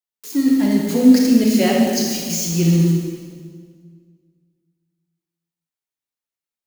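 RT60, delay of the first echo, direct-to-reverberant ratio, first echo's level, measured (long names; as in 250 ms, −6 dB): 1.8 s, no echo audible, −1.0 dB, no echo audible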